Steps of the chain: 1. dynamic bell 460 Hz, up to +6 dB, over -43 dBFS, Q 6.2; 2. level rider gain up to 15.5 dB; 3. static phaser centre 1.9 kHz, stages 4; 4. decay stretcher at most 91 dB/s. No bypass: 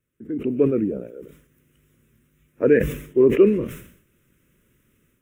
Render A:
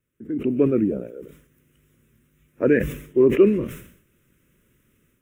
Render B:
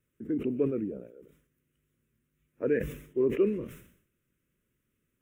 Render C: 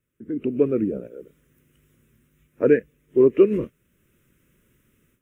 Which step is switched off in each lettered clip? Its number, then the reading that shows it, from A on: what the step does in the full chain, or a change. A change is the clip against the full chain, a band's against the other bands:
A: 1, 500 Hz band -2.0 dB; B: 2, momentary loudness spread change -6 LU; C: 4, momentary loudness spread change -3 LU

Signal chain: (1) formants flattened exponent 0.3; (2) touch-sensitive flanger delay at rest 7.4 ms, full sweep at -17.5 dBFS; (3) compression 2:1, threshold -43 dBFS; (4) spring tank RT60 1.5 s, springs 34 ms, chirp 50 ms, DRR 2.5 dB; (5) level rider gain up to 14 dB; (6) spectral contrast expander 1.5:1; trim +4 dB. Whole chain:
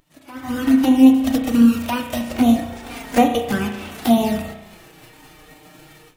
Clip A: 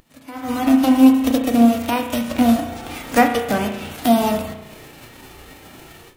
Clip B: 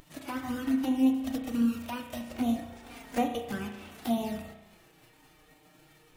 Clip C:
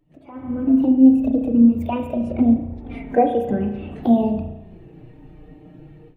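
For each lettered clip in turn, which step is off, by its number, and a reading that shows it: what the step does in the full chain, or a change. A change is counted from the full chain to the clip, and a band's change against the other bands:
2, 125 Hz band -3.0 dB; 5, momentary loudness spread change -2 LU; 1, 2 kHz band -12.5 dB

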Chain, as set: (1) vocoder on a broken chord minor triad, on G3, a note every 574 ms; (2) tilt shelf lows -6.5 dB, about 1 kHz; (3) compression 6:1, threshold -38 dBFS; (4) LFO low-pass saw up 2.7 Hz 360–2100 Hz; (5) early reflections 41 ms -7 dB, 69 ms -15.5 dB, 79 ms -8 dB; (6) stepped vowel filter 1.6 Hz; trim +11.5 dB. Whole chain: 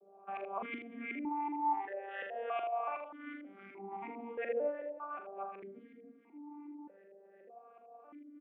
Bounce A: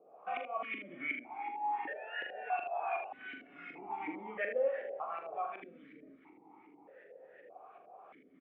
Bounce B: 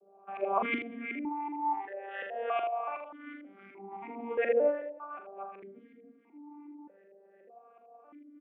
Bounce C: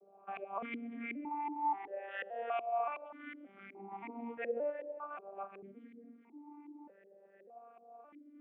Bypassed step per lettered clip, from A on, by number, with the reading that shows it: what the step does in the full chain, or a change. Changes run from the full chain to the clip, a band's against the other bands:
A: 1, 250 Hz band -7.0 dB; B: 3, mean gain reduction 2.0 dB; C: 5, momentary loudness spread change -1 LU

